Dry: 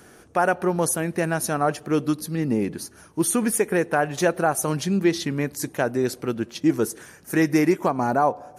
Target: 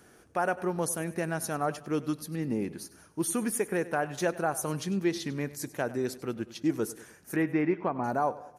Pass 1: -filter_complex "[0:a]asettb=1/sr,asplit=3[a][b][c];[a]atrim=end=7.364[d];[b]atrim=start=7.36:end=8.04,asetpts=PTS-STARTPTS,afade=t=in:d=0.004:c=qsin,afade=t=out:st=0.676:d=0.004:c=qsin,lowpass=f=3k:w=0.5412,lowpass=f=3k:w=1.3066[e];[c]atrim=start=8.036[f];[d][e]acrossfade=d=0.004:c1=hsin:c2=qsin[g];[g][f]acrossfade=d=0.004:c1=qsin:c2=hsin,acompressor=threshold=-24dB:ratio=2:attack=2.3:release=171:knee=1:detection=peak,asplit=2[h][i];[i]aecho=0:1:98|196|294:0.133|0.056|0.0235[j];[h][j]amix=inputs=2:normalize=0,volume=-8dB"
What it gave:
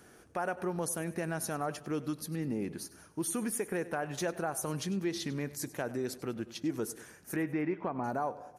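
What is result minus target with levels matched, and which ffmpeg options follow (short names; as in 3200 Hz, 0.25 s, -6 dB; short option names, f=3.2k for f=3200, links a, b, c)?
compressor: peak gain reduction +7 dB
-filter_complex "[0:a]asettb=1/sr,asplit=3[a][b][c];[a]atrim=end=7.364[d];[b]atrim=start=7.36:end=8.04,asetpts=PTS-STARTPTS,afade=t=in:d=0.004:c=qsin,afade=t=out:st=0.676:d=0.004:c=qsin,lowpass=f=3k:w=0.5412,lowpass=f=3k:w=1.3066[e];[c]atrim=start=8.036[f];[d][e]acrossfade=d=0.004:c1=hsin:c2=qsin[g];[g][f]acrossfade=d=0.004:c1=qsin:c2=hsin,asplit=2[h][i];[i]aecho=0:1:98|196|294:0.133|0.056|0.0235[j];[h][j]amix=inputs=2:normalize=0,volume=-8dB"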